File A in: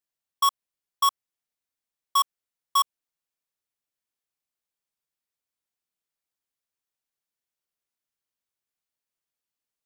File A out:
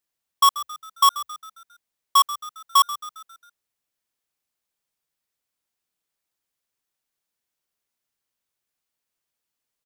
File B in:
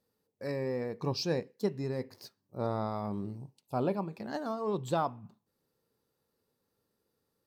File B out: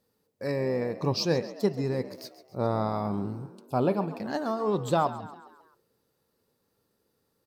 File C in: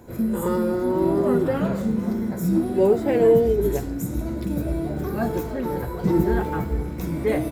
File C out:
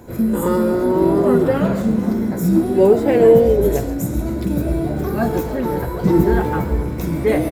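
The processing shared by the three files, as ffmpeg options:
-filter_complex "[0:a]asplit=6[a][b][c][d][e][f];[b]adelay=135,afreqshift=61,volume=-15dB[g];[c]adelay=270,afreqshift=122,volume=-21dB[h];[d]adelay=405,afreqshift=183,volume=-27dB[i];[e]adelay=540,afreqshift=244,volume=-33.1dB[j];[f]adelay=675,afreqshift=305,volume=-39.1dB[k];[a][g][h][i][j][k]amix=inputs=6:normalize=0,volume=5.5dB"

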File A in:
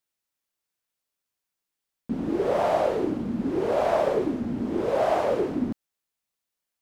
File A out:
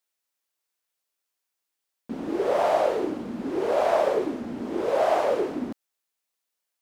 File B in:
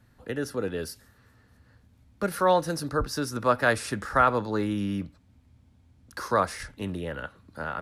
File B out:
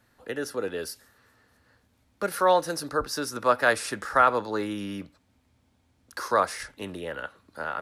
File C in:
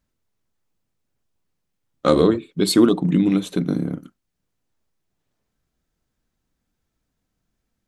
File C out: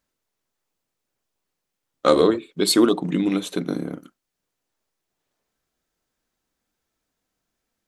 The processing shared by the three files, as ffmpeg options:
-af "bass=f=250:g=-12,treble=f=4k:g=1,volume=1.5dB"

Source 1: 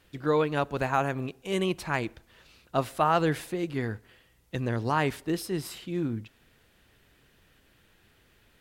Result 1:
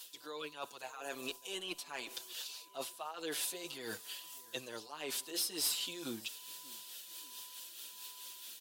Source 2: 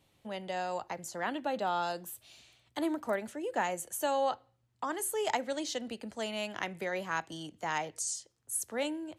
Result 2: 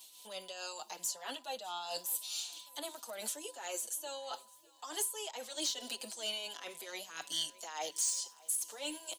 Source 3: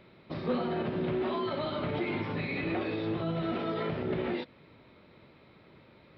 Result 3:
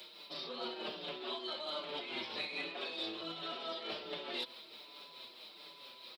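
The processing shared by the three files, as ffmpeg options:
-filter_complex "[0:a]acrossover=split=2800[a][b];[b]acompressor=threshold=-53dB:ratio=4:attack=1:release=60[c];[a][c]amix=inputs=2:normalize=0,highpass=480,areverse,acompressor=threshold=-41dB:ratio=12,areverse,aexciter=amount=5.7:drive=8.5:freq=3k,asoftclip=type=tanh:threshold=-29dB,tremolo=f=4.6:d=0.46,aeval=exprs='val(0)+0.000447*sin(2*PI*1000*n/s)':c=same,asplit=2[d][e];[e]aecho=0:1:602|1204|1806|2408:0.0708|0.0411|0.0238|0.0138[f];[d][f]amix=inputs=2:normalize=0,asplit=2[g][h];[h]adelay=5.9,afreqshift=-1.3[i];[g][i]amix=inputs=2:normalize=1,volume=5.5dB"

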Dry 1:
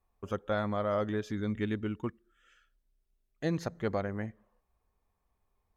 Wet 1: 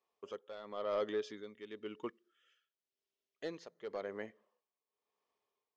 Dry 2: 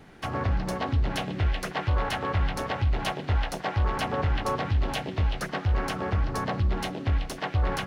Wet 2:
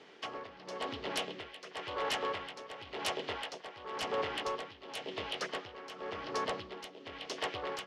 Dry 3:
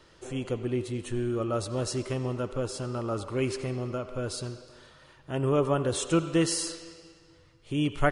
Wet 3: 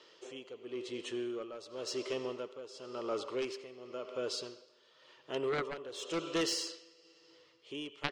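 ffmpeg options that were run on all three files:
-af "highpass=420,equalizer=f=430:t=q:w=4:g=6,equalizer=f=770:t=q:w=4:g=-5,equalizer=f=1.5k:t=q:w=4:g=-5,equalizer=f=3.1k:t=q:w=4:g=6,equalizer=f=5k:t=q:w=4:g=3,lowpass=f=6.8k:w=0.5412,lowpass=f=6.8k:w=1.3066,aeval=exprs='0.316*(cos(1*acos(clip(val(0)/0.316,-1,1)))-cos(1*PI/2))+0.141*(cos(3*acos(clip(val(0)/0.316,-1,1)))-cos(3*PI/2))+0.00224*(cos(5*acos(clip(val(0)/0.316,-1,1)))-cos(5*PI/2))+0.002*(cos(7*acos(clip(val(0)/0.316,-1,1)))-cos(7*PI/2))':c=same,tremolo=f=0.94:d=0.77,volume=8dB"

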